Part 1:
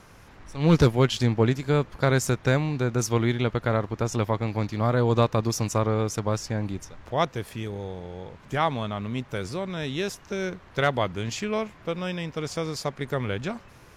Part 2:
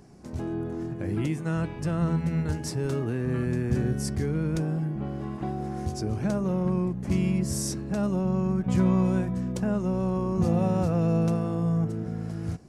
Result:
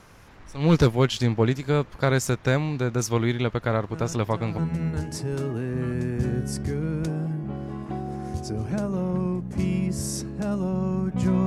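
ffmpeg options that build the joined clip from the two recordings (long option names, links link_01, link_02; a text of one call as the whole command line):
ffmpeg -i cue0.wav -i cue1.wav -filter_complex "[1:a]asplit=2[link_01][link_02];[0:a]apad=whole_dur=11.46,atrim=end=11.46,atrim=end=4.582[link_03];[link_02]atrim=start=2.098:end=8.98[link_04];[link_01]atrim=start=1.41:end=2.1,asetpts=PTS-STARTPTS,volume=-10dB,afade=type=in:duration=0.004:curve=hsin,afade=type=out:start_time=0.686:duration=0.004:curve=hsin,adelay=171549S[link_05];[link_03][link_04]acrossfade=duration=0.004:curve1=hsin:curve2=hsin[link_06];[link_06][link_05]amix=inputs=2:normalize=0" out.wav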